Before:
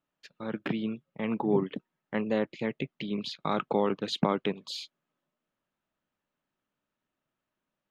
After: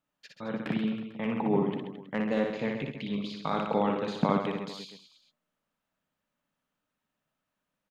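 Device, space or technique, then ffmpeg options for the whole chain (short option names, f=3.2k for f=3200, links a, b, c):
de-esser from a sidechain: -filter_complex "[0:a]equalizer=f=360:w=7.3:g=-11,asplit=2[a][b];[b]highpass=6.6k,apad=whole_len=348586[c];[a][c]sidechaincompress=threshold=-51dB:ratio=8:attack=1.4:release=40,aecho=1:1:60|132|218.4|322.1|446.5:0.631|0.398|0.251|0.158|0.1"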